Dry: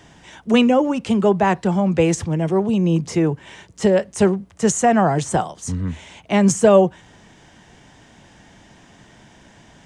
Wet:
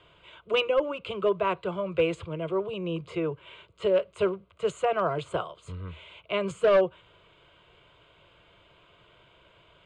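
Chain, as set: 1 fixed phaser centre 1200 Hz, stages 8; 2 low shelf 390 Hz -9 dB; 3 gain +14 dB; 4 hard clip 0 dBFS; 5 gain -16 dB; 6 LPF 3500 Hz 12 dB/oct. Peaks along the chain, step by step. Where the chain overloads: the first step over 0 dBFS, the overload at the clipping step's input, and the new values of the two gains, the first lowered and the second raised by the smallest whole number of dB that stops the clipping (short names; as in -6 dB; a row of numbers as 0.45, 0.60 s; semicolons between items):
-4.5, -6.5, +7.5, 0.0, -16.0, -15.5 dBFS; step 3, 7.5 dB; step 3 +6 dB, step 5 -8 dB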